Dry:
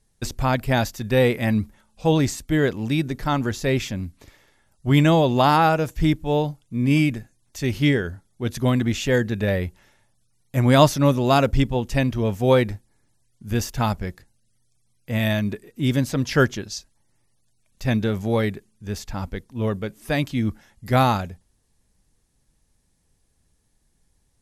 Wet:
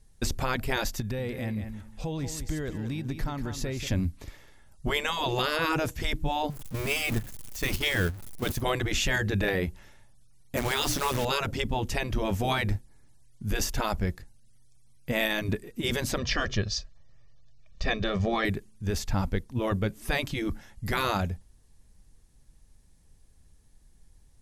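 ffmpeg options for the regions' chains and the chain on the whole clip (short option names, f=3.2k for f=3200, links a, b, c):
-filter_complex "[0:a]asettb=1/sr,asplit=3[a][b][c];[a]atrim=end=1.004[d];[b]atrim=start=1:end=3.87,asetpts=PTS-STARTPTS,afade=t=in:d=0.004:c=qsin,afade=t=out:st=2.866:d=0.004:c=qsin,acompressor=threshold=-34dB:ratio=5:attack=3.2:release=140:knee=1:detection=peak,aecho=1:1:187|374|561:0.355|0.0639|0.0115,atrim=end_sample=126567[e];[c]atrim=start=3.866[f];[d][e]acrossfade=d=0.004:c1=hsin:c2=qsin[g];[g][f]acrossfade=d=0.004:c1=qsin:c2=hsin,asettb=1/sr,asplit=3[h][i][j];[h]atrim=end=6.504[k];[i]atrim=start=6.5:end=8.62,asetpts=PTS-STARTPTS,afade=t=in:d=0.004:c=qsin,afade=t=out:st=2.116:d=0.004:c=qsin,aeval=exprs='val(0)+0.5*0.0282*sgn(val(0))':c=same,agate=range=-12dB:threshold=-28dB:ratio=16:release=100:detection=peak,highshelf=f=9.5k:g=10.5[l];[j]atrim=start=8.616[m];[k][l]acrossfade=d=0.004:c1=hsin:c2=qsin[n];[n][m]acrossfade=d=0.004:c1=qsin:c2=hsin,asettb=1/sr,asplit=3[o][p][q];[o]atrim=end=10.574[r];[p]atrim=start=10.57:end=11.25,asetpts=PTS-STARTPTS,afade=t=in:d=0.004:c=qsin,afade=t=out:st=0.676:d=0.004:c=qsin,bandreject=f=60:t=h:w=6,bandreject=f=120:t=h:w=6,bandreject=f=180:t=h:w=6,bandreject=f=240:t=h:w=6,bandreject=f=300:t=h:w=6,bandreject=f=360:t=h:w=6,acrusher=bits=6:dc=4:mix=0:aa=0.000001[s];[q]atrim=start=11.246[t];[r][s]acrossfade=d=0.004:c1=hsin:c2=qsin[u];[u][t]acrossfade=d=0.004:c1=qsin:c2=hsin,asettb=1/sr,asplit=3[v][w][x];[v]atrim=end=16.184[y];[w]atrim=start=16.18:end=18.45,asetpts=PTS-STARTPTS,afade=t=in:d=0.004:c=qsin,afade=t=out:st=2.266:d=0.004:c=qsin,lowpass=f=5.7k:w=0.5412,lowpass=f=5.7k:w=1.3066,aecho=1:1:1.7:0.62,atrim=end_sample=100107[z];[x]atrim=start=18.446[aa];[y][z]acrossfade=d=0.004:c1=hsin:c2=qsin[ab];[ab][aa]acrossfade=d=0.004:c1=qsin:c2=hsin,afftfilt=real='re*lt(hypot(re,im),0.398)':imag='im*lt(hypot(re,im),0.398)':win_size=1024:overlap=0.75,lowshelf=f=85:g=10.5,alimiter=limit=-17dB:level=0:latency=1:release=252,volume=1.5dB"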